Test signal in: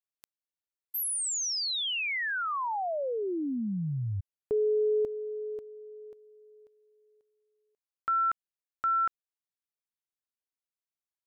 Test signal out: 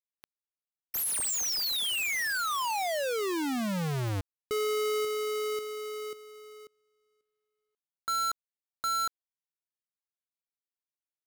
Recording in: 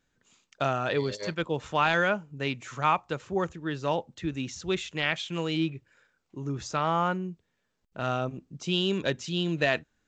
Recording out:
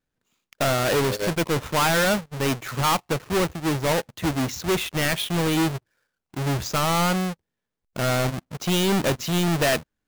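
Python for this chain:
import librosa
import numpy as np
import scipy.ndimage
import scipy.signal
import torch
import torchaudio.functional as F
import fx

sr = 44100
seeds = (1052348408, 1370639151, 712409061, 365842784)

y = fx.halfwave_hold(x, sr)
y = fx.leveller(y, sr, passes=3)
y = y * 10.0 ** (-6.0 / 20.0)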